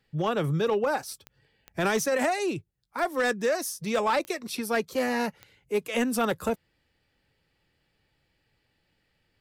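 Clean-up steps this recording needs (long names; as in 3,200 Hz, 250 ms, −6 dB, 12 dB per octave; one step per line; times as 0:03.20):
clipped peaks rebuilt −19 dBFS
click removal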